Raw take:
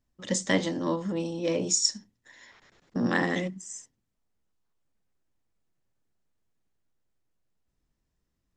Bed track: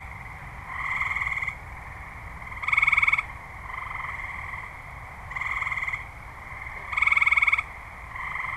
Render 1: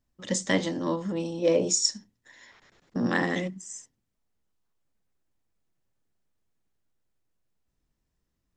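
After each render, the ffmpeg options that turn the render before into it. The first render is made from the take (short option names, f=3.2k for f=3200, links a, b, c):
-filter_complex "[0:a]asettb=1/sr,asplit=3[a][b][c];[a]atrim=end=1.424[d];[b]atrim=start=1.42:end=1.88,asetpts=PTS-STARTPTS,afade=t=in:d=0.004:c=qsin,afade=t=out:st=0.456:d=0.004:c=qsin,equalizer=f=540:t=o:w=1.1:g=7[e];[c]atrim=start=1.876[f];[d][e]acrossfade=d=0.004:c1=hsin:c2=qsin[g];[g][f]acrossfade=d=0.004:c1=qsin:c2=hsin"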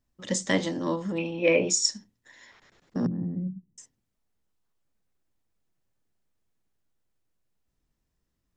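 -filter_complex "[0:a]asettb=1/sr,asplit=3[a][b][c];[a]atrim=end=1.184[d];[b]atrim=start=1.18:end=1.7,asetpts=PTS-STARTPTS,afade=t=in:d=0.004:c=qsin,afade=t=out:st=0.516:d=0.004:c=qsin,lowpass=f=2.4k:t=q:w=7.2[e];[c]atrim=start=1.696[f];[d][e]acrossfade=d=0.004:c1=hsin:c2=qsin[g];[g][f]acrossfade=d=0.004:c1=qsin:c2=hsin,asettb=1/sr,asplit=3[h][i][j];[h]atrim=end=3.064[k];[i]atrim=start=3.06:end=3.78,asetpts=PTS-STARTPTS,afade=t=in:d=0.004:c=qsin,afade=t=out:st=0.716:d=0.004:c=qsin,lowpass=f=160:t=q:w=1.7[l];[j]atrim=start=3.776[m];[k][l]acrossfade=d=0.004:c1=hsin:c2=qsin[n];[n][m]acrossfade=d=0.004:c1=qsin:c2=hsin"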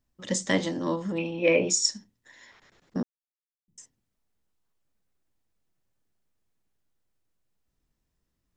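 -filter_complex "[0:a]asplit=3[a][b][c];[a]atrim=end=3.03,asetpts=PTS-STARTPTS,afade=t=out:st=3.026:d=0.004:c=hsin[d];[b]atrim=start=3.03:end=3.68,asetpts=PTS-STARTPTS,volume=0[e];[c]atrim=start=3.68,asetpts=PTS-STARTPTS,afade=t=in:d=0.004:c=hsin[f];[d][e][f]concat=n=3:v=0:a=1"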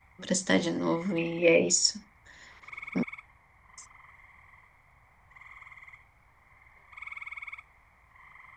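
-filter_complex "[1:a]volume=-21dB[a];[0:a][a]amix=inputs=2:normalize=0"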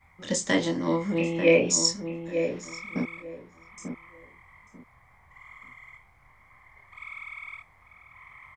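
-filter_complex "[0:a]asplit=2[a][b];[b]adelay=24,volume=-4dB[c];[a][c]amix=inputs=2:normalize=0,asplit=2[d][e];[e]adelay=892,lowpass=f=1.2k:p=1,volume=-7dB,asplit=2[f][g];[g]adelay=892,lowpass=f=1.2k:p=1,volume=0.22,asplit=2[h][i];[i]adelay=892,lowpass=f=1.2k:p=1,volume=0.22[j];[f][h][j]amix=inputs=3:normalize=0[k];[d][k]amix=inputs=2:normalize=0"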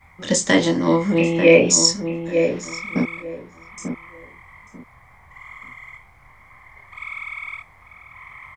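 -af "volume=8.5dB,alimiter=limit=-2dB:level=0:latency=1"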